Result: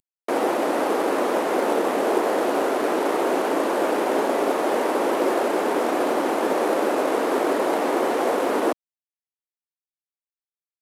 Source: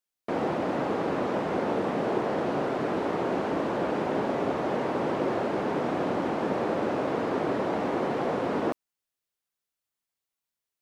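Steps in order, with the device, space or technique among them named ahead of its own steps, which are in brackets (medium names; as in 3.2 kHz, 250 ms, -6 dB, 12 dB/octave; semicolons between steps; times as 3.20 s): early wireless headset (high-pass 280 Hz 24 dB/octave; CVSD coder 64 kbps); treble shelf 7.4 kHz +6.5 dB; trim +7 dB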